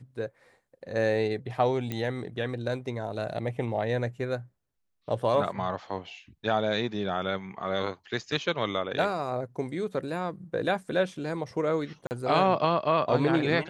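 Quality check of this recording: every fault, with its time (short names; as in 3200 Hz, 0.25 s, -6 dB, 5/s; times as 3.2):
1.92 pop -18 dBFS
12.07–12.11 gap 39 ms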